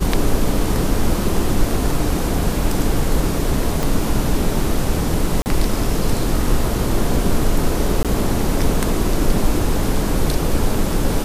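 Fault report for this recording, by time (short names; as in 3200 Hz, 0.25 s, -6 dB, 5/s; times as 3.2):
3.83 pop
5.42–5.46 gap 39 ms
8.03–8.05 gap 17 ms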